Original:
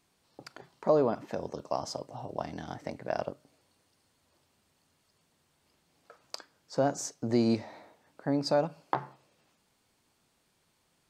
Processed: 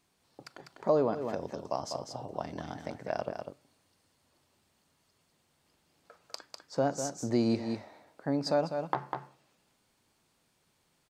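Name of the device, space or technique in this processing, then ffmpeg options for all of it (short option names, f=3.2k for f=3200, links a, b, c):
ducked delay: -filter_complex "[0:a]asplit=3[a][b][c];[b]adelay=199,volume=-5dB[d];[c]apad=whole_len=497939[e];[d][e]sidechaincompress=threshold=-36dB:ratio=8:attack=26:release=169[f];[a][f]amix=inputs=2:normalize=0,volume=-1.5dB"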